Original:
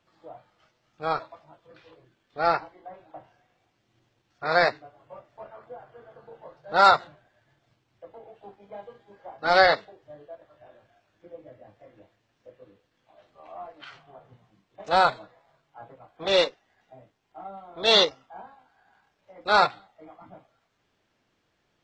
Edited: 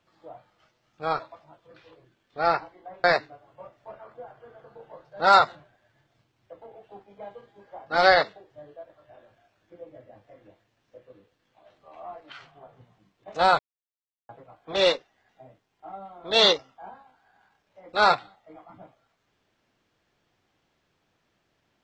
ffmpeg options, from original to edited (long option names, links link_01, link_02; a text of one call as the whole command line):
ffmpeg -i in.wav -filter_complex "[0:a]asplit=4[link_01][link_02][link_03][link_04];[link_01]atrim=end=3.042[link_05];[link_02]atrim=start=4.558:end=15.11,asetpts=PTS-STARTPTS,afade=type=out:start_time=10.548:duration=0.004:curve=hsin[link_06];[link_03]atrim=start=15.11:end=15.81,asetpts=PTS-STARTPTS,volume=0[link_07];[link_04]atrim=start=15.81,asetpts=PTS-STARTPTS,afade=type=in:duration=0.004:curve=hsin[link_08];[link_06][link_07][link_08]concat=n=3:v=0:a=1[link_09];[link_05][link_09]acrossfade=duration=0.004:curve1=hsin:curve2=hsin" out.wav